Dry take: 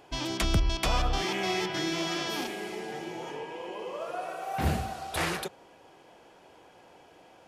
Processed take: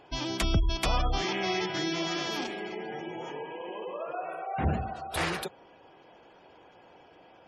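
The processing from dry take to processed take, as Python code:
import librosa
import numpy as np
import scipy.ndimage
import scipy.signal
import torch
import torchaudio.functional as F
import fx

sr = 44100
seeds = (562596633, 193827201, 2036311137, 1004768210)

y = fx.spec_gate(x, sr, threshold_db=-25, keep='strong')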